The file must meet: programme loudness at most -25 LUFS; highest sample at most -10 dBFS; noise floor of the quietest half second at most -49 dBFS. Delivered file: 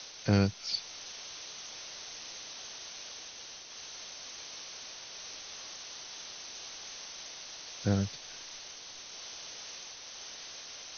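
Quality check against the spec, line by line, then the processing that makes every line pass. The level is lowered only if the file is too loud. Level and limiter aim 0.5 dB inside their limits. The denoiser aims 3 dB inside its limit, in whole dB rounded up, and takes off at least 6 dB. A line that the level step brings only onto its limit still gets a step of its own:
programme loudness -38.0 LUFS: pass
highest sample -13.5 dBFS: pass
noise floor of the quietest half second -47 dBFS: fail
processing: noise reduction 6 dB, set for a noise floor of -47 dBFS

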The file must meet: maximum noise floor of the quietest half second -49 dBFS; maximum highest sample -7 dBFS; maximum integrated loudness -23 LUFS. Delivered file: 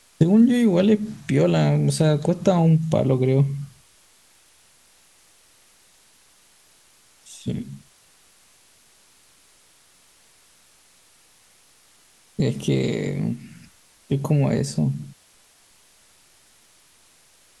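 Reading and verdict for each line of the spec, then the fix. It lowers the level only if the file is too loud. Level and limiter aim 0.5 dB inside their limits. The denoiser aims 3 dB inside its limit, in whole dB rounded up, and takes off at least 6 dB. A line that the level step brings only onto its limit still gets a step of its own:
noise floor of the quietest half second -56 dBFS: pass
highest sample -4.0 dBFS: fail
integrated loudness -21.0 LUFS: fail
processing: trim -2.5 dB; peak limiter -7.5 dBFS

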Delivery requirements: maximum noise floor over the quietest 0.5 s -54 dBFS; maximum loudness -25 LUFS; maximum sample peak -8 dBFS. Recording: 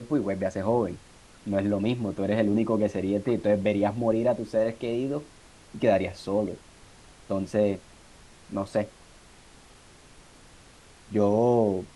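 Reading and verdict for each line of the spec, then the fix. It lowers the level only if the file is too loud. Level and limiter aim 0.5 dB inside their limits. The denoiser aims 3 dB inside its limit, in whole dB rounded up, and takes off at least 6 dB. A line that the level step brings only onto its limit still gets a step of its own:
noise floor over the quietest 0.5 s -52 dBFS: fail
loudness -27.0 LUFS: pass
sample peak -9.5 dBFS: pass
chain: noise reduction 6 dB, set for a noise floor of -52 dBFS

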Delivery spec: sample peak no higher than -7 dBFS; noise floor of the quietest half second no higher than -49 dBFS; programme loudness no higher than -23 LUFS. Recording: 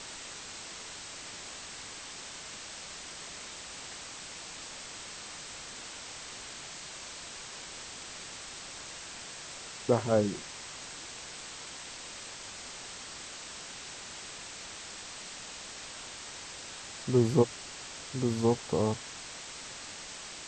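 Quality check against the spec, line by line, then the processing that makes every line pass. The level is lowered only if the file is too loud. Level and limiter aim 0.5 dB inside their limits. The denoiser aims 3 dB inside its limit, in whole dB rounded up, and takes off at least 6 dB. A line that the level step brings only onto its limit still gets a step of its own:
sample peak -10.0 dBFS: pass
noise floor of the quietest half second -44 dBFS: fail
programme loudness -36.5 LUFS: pass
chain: noise reduction 8 dB, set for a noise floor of -44 dBFS

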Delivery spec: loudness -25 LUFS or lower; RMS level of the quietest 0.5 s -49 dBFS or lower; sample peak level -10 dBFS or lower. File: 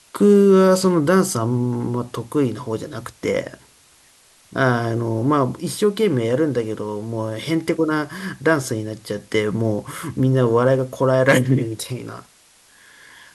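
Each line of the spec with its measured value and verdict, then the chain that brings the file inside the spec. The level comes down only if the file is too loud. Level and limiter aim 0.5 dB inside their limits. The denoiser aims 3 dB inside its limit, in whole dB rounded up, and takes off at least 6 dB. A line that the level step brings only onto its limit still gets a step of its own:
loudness -19.5 LUFS: fail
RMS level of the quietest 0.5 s -53 dBFS: pass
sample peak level -3.0 dBFS: fail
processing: trim -6 dB; peak limiter -10.5 dBFS

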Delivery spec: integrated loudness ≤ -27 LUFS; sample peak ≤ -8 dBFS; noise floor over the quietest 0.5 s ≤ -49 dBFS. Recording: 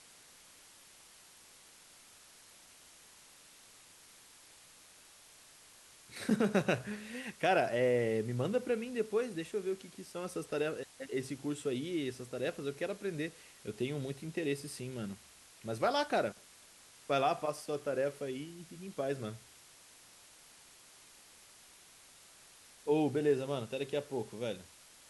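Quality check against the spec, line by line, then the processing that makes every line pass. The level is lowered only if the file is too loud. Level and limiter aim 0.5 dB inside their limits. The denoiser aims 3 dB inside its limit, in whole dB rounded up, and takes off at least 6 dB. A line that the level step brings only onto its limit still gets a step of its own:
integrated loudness -35.5 LUFS: pass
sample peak -16.5 dBFS: pass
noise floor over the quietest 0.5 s -59 dBFS: pass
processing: none needed

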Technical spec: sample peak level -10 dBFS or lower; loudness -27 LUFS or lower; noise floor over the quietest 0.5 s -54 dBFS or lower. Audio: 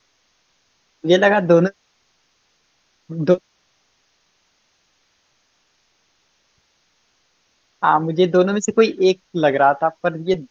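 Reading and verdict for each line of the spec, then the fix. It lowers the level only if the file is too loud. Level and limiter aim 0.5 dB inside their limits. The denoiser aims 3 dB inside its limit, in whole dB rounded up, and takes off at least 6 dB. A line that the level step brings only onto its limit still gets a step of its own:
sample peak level -2.5 dBFS: fail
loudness -17.5 LUFS: fail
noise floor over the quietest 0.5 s -64 dBFS: pass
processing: trim -10 dB

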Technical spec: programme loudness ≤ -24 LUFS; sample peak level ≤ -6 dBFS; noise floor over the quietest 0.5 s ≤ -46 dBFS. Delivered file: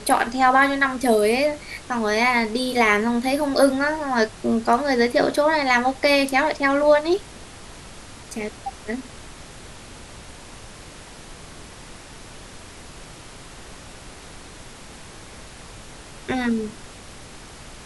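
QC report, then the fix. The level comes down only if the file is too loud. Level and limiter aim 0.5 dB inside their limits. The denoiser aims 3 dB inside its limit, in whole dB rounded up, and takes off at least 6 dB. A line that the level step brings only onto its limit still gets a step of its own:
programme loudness -20.5 LUFS: fail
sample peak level -5.0 dBFS: fail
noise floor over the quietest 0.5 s -41 dBFS: fail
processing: noise reduction 6 dB, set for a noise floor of -41 dBFS; trim -4 dB

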